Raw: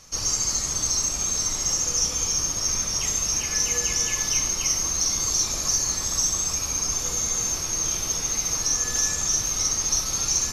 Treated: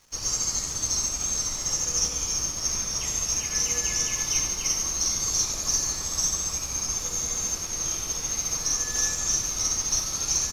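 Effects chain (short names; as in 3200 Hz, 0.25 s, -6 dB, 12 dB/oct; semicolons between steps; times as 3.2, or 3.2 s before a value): feedback echo 92 ms, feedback 51%, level -8 dB; crackle 570/s -36 dBFS; upward expander 1.5:1, over -42 dBFS; gain -1.5 dB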